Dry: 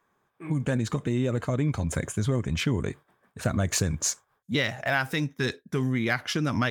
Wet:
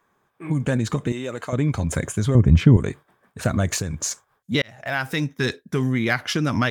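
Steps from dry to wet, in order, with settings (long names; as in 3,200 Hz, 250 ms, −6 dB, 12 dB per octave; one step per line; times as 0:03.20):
0:01.12–0:01.53: high-pass filter 710 Hz 6 dB per octave
0:02.35–0:02.77: spectral tilt −3.5 dB per octave
0:03.71–0:04.11: downward compressor, threshold −27 dBFS, peak gain reduction 7 dB
0:04.62–0:05.41: fade in equal-power
level +4.5 dB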